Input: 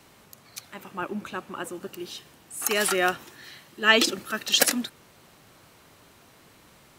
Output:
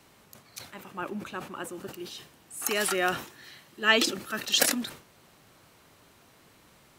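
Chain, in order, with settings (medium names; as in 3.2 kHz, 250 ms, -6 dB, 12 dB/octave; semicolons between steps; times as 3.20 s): decay stretcher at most 120 dB/s; trim -3.5 dB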